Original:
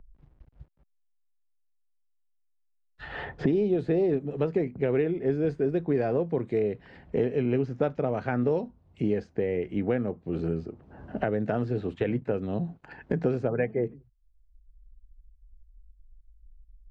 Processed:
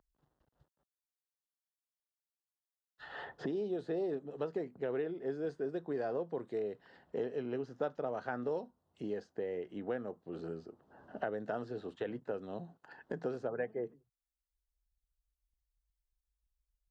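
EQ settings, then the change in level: high-pass 800 Hz 6 dB/octave; peaking EQ 2.3 kHz -15 dB 0.42 oct; -3.5 dB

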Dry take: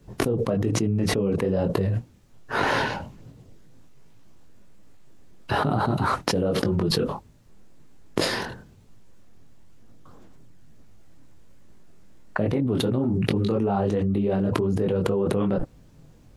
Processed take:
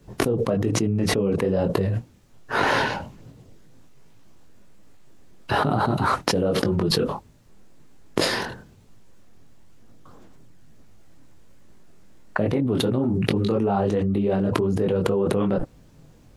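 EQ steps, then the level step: bass shelf 210 Hz -3 dB; +2.5 dB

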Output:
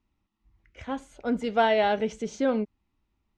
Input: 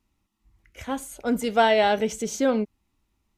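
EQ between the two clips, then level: distance through air 140 m; -2.5 dB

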